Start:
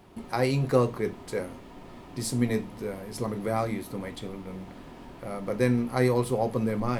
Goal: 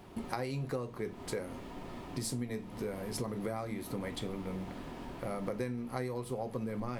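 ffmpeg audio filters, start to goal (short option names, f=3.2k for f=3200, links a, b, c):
-af "acompressor=threshold=-34dB:ratio=12,volume=1dB"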